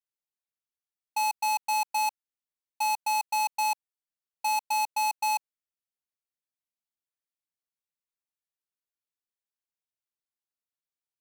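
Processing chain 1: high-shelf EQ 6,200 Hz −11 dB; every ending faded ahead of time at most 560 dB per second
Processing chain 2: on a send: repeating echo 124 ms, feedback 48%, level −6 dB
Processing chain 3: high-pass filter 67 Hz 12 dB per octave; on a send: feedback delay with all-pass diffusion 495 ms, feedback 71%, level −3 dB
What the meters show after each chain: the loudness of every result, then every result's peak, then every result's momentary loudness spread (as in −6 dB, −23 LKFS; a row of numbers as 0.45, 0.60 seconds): −35.0, −28.0, −26.0 LKFS; −25.5, −21.0, −16.0 dBFS; 3, 12, 18 LU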